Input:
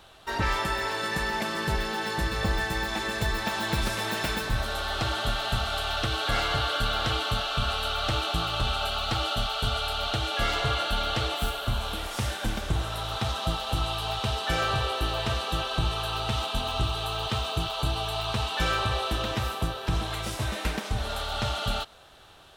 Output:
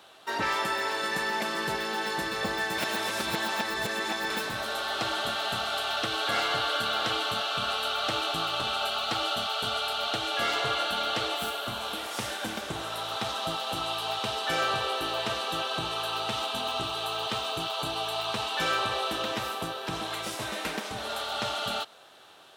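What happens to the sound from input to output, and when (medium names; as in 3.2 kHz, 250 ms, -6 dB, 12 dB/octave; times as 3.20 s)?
2.78–4.30 s: reverse
whole clip: high-pass 240 Hz 12 dB/octave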